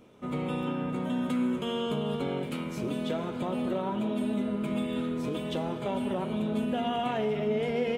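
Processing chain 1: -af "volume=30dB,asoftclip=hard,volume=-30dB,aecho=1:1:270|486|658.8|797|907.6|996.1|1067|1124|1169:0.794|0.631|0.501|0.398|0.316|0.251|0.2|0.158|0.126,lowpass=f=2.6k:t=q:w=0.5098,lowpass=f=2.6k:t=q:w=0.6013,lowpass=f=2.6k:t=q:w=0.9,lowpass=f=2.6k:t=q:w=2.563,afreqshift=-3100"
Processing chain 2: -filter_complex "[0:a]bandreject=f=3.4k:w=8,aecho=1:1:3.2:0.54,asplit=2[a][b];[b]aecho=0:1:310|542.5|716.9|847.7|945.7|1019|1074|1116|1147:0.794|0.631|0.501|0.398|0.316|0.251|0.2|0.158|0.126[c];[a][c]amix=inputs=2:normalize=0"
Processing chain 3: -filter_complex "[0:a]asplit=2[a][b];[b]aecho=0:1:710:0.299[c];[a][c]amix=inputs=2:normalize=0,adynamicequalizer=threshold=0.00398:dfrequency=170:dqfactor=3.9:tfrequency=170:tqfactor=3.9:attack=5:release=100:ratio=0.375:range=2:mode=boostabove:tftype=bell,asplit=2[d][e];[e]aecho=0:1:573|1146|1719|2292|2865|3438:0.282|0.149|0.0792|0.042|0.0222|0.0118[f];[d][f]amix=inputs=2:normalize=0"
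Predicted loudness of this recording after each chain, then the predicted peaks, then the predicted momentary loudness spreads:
-26.0, -26.0, -30.0 LUFS; -15.5, -13.0, -16.5 dBFS; 3, 3, 3 LU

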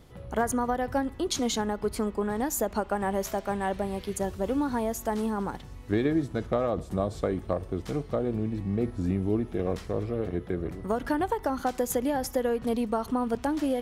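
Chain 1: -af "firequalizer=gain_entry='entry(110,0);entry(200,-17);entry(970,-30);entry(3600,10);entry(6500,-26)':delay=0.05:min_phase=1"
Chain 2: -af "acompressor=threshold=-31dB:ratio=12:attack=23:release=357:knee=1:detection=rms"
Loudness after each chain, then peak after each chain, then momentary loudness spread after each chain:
-39.5, -37.0 LUFS; -13.5, -18.5 dBFS; 10, 3 LU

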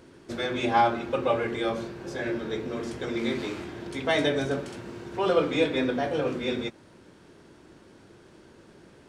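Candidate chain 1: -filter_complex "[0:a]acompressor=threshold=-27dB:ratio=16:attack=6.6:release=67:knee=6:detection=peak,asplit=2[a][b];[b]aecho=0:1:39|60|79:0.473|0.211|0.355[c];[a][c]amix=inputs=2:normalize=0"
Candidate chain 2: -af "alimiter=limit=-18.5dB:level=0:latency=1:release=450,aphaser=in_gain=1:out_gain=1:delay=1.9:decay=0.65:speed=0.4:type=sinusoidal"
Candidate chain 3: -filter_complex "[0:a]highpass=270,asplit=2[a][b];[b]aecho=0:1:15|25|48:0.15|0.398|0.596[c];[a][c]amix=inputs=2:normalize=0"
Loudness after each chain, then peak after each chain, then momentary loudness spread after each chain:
-31.5, -28.5, -27.5 LUFS; -15.5, -11.5, -9.0 dBFS; 7, 13, 13 LU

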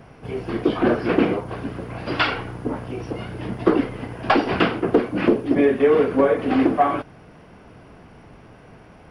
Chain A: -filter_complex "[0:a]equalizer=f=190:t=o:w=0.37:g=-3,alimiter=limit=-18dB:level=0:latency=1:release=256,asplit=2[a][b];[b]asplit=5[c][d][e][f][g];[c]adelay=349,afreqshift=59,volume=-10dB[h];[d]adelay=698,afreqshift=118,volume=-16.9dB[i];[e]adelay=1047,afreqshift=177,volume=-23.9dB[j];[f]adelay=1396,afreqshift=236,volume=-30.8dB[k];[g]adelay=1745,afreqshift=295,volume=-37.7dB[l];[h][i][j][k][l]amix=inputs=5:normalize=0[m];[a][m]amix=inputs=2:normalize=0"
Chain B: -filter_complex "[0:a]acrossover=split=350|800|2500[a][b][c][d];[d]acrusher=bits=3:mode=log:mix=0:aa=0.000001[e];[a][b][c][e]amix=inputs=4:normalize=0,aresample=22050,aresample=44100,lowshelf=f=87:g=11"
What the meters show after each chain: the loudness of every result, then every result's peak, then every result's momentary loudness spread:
-28.5, -20.5 LUFS; -15.5, -3.0 dBFS; 19, 13 LU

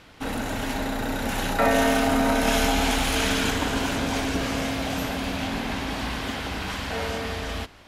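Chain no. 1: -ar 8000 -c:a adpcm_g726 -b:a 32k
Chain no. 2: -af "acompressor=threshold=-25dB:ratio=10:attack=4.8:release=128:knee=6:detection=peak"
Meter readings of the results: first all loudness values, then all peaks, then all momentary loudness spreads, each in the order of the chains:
-26.0, -30.0 LUFS; -9.5, -17.0 dBFS; 9, 3 LU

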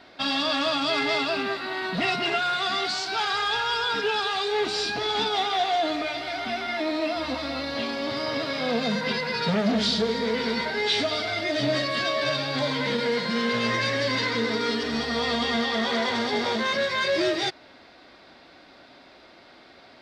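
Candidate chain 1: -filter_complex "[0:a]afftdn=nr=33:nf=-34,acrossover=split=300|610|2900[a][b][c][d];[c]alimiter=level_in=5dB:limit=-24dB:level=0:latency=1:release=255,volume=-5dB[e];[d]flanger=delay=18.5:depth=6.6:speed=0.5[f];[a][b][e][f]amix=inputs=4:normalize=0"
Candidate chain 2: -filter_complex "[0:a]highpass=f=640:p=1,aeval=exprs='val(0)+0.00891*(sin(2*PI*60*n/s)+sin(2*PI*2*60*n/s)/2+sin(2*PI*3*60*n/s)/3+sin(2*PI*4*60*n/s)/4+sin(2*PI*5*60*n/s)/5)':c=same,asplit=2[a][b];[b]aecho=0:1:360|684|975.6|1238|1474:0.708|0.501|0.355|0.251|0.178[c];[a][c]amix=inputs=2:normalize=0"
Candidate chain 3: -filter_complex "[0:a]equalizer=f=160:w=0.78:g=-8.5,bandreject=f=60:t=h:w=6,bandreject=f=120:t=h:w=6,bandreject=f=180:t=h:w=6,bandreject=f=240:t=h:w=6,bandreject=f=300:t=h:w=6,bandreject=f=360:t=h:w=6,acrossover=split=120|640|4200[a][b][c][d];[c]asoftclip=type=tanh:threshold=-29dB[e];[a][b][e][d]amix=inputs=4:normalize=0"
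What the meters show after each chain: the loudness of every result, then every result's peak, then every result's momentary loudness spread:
-28.5, -24.0, -28.0 LUFS; -15.0, -12.0, -17.0 dBFS; 5, 5, 4 LU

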